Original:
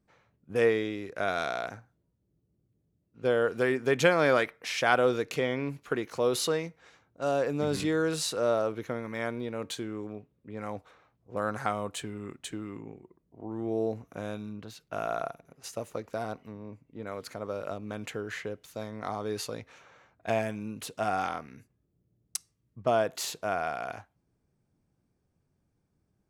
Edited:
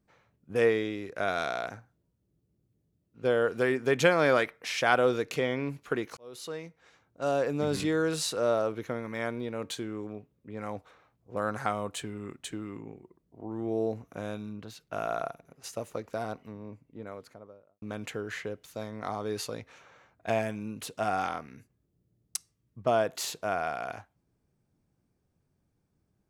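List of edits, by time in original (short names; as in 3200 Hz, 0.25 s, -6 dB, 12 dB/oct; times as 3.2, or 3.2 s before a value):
6.17–7.23 fade in
16.66–17.82 studio fade out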